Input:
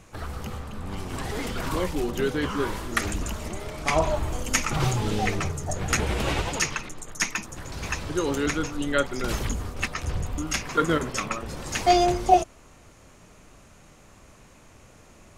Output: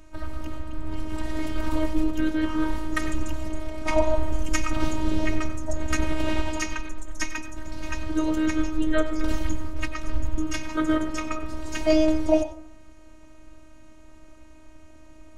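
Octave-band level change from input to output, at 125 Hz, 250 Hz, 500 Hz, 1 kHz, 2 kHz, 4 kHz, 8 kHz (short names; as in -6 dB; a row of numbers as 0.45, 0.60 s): -3.5, +4.5, -0.5, -8.0, -3.5, -5.5, -7.5 dB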